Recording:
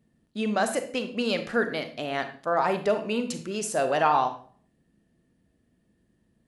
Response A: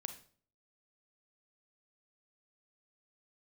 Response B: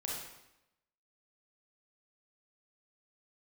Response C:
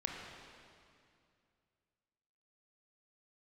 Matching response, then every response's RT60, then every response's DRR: A; 0.50, 0.90, 2.4 s; 7.5, -3.5, -0.5 dB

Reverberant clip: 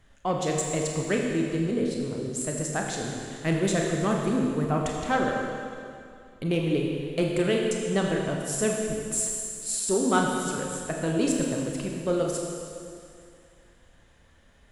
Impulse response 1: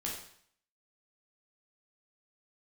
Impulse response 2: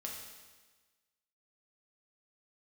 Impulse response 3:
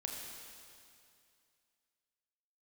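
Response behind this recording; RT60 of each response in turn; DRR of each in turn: 3; 0.60, 1.3, 2.4 s; -3.5, -2.0, -0.5 dB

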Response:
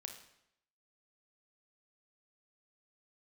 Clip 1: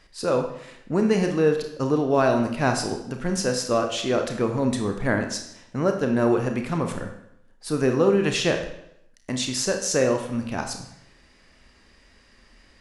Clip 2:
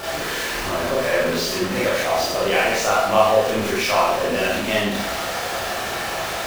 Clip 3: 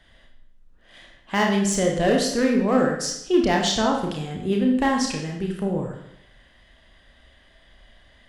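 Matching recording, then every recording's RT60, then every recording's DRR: 1; 0.75, 0.75, 0.75 s; 4.5, -7.0, 0.5 dB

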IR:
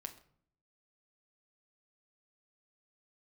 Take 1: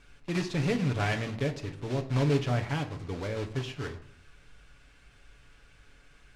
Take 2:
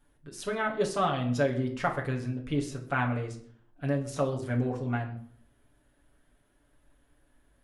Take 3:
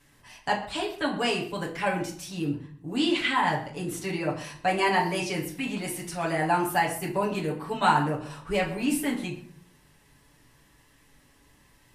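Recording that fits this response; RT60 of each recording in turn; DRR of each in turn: 1; 0.55, 0.55, 0.55 s; 4.0, -0.5, -4.5 dB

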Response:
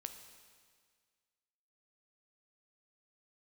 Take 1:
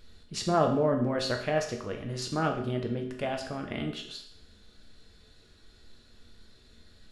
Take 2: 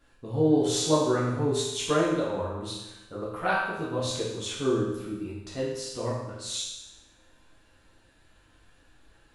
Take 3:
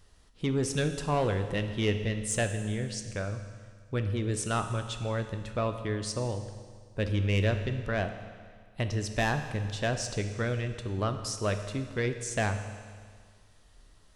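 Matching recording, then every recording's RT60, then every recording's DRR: 3; 0.65, 1.0, 1.8 s; 2.0, -7.5, 7.0 dB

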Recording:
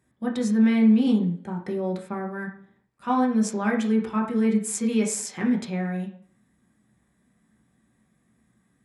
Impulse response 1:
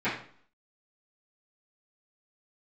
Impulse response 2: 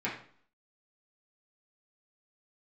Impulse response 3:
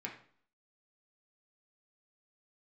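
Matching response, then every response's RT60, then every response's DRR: 3; 0.50, 0.50, 0.55 s; -16.0, -7.5, -1.5 dB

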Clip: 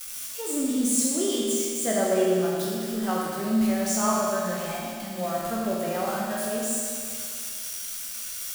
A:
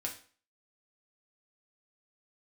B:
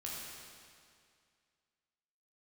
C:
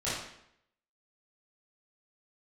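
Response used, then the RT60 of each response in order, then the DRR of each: B; 0.45, 2.2, 0.75 s; -0.5, -5.0, -12.0 dB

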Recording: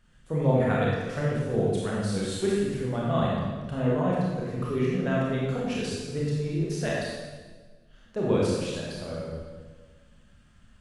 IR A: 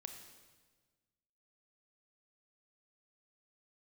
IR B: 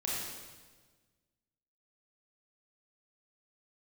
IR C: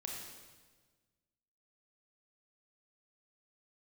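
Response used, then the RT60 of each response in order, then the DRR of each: B; 1.4, 1.4, 1.4 s; 5.0, -6.0, -1.0 dB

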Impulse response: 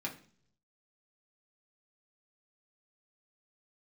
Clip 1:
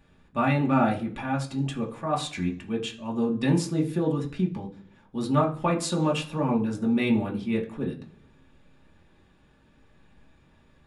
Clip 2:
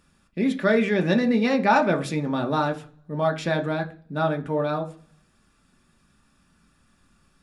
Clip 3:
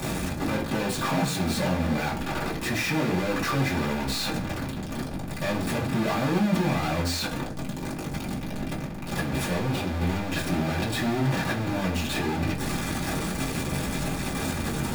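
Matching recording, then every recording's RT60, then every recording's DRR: 1; 0.50, 0.50, 0.50 s; -2.5, 4.0, -9.0 dB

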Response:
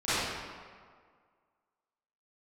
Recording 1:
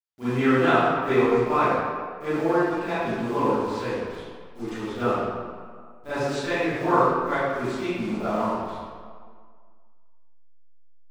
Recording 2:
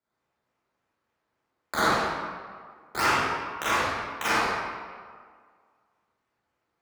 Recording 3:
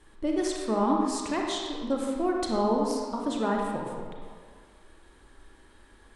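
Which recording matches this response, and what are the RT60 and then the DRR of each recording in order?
1; 1.9, 1.9, 1.9 s; -18.5, -10.0, -1.0 dB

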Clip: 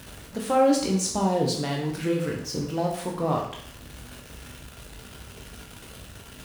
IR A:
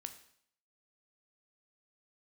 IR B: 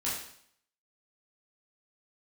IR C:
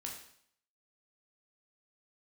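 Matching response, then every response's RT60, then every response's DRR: C; 0.65, 0.65, 0.65 s; 7.5, -8.5, -1.0 dB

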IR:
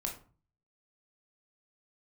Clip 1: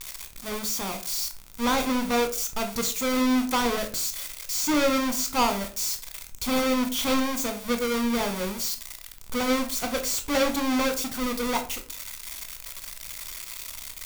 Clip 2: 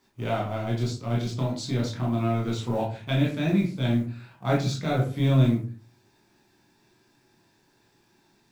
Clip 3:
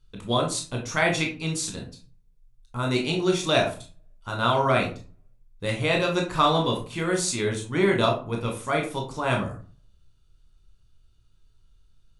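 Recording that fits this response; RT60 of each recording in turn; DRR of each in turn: 3; 0.40, 0.40, 0.40 s; 6.0, -4.0, 0.5 dB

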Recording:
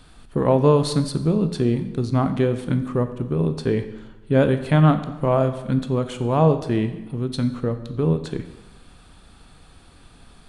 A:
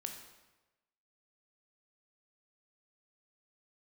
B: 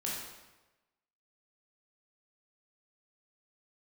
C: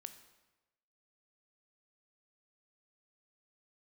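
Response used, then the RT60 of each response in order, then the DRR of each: C; 1.1, 1.1, 1.1 s; 3.5, -5.5, 9.0 dB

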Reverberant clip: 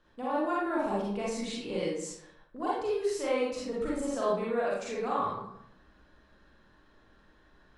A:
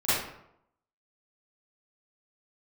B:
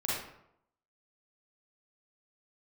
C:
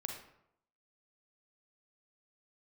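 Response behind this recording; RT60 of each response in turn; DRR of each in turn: B; 0.75, 0.75, 0.75 s; -16.0, -7.5, 2.0 dB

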